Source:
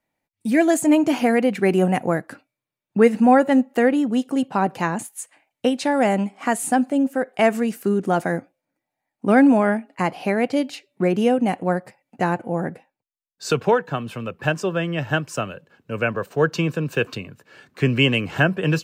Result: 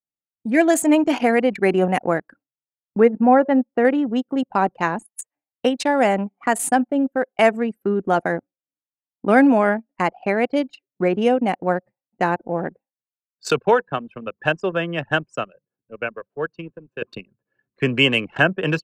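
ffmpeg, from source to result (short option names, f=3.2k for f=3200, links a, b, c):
-filter_complex "[0:a]asettb=1/sr,asplit=3[a][b][c];[a]atrim=end=3.004[d];[b]atrim=start=3:end=3.85,asetpts=PTS-STARTPTS,afade=t=in:d=0.004:c=qsin,afade=t=out:st=0.846:d=0.004:c=qsin,lowpass=f=1.2k:p=1[e];[c]atrim=start=3.846[f];[d][e]acrossfade=d=0.004:c1=hsin:c2=qsin[g];[g][f]acrossfade=d=0.004:c1=qsin:c2=hsin,asplit=2[h][i];[h]atrim=end=17.02,asetpts=PTS-STARTPTS,afade=t=out:st=15.15:d=1.87:c=qua:silence=0.316228[j];[i]atrim=start=17.02,asetpts=PTS-STARTPTS,afade=t=in:d=0.004:c=hsin:silence=0.316228[k];[j][k]concat=n=2:v=0:a=1,highpass=f=310:p=1,anlmdn=63.1,volume=3dB"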